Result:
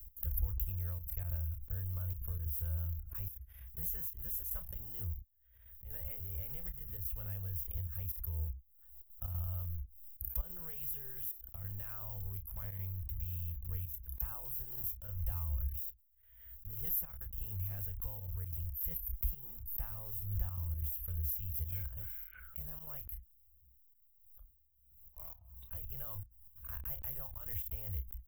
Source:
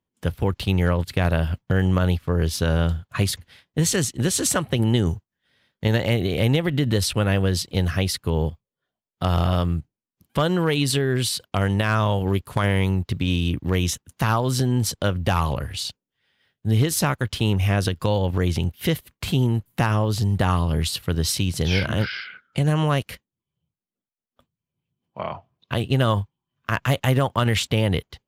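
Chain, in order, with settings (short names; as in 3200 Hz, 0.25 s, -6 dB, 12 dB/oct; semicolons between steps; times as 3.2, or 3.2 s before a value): in parallel at -5 dB: bit-crush 5-bit; on the sum: inverse Chebyshev band-stop 110–9300 Hz, stop band 40 dB; doubler 30 ms -11 dB; reverse; upward compressor, threshold -45 dBFS; reverse; step gate "x.xxxxxxxxxx.x" 183 bpm -12 dB; backwards sustainer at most 55 dB/s; gain +3 dB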